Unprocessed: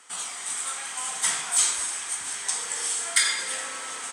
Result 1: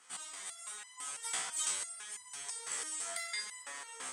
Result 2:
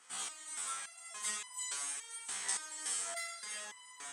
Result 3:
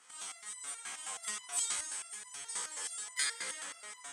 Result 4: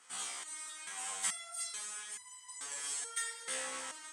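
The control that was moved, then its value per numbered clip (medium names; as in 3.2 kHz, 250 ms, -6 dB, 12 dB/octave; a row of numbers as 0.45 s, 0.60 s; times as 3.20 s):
resonator arpeggio, rate: 6 Hz, 3.5 Hz, 9.4 Hz, 2.3 Hz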